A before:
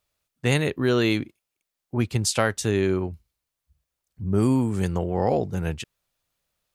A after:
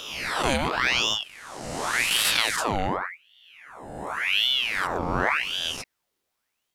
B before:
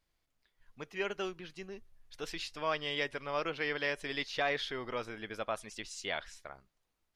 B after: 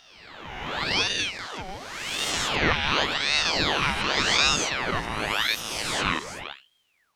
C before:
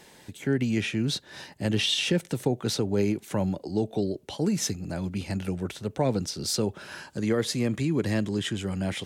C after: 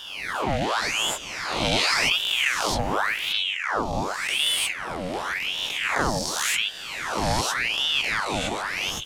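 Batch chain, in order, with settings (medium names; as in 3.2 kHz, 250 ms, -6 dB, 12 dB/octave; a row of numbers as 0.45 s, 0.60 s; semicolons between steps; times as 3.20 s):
reverse spectral sustain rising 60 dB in 1.77 s; ring modulator with a swept carrier 1.8 kHz, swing 80%, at 0.89 Hz; normalise loudness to -24 LUFS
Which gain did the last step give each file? -1.5 dB, +10.5 dB, +1.5 dB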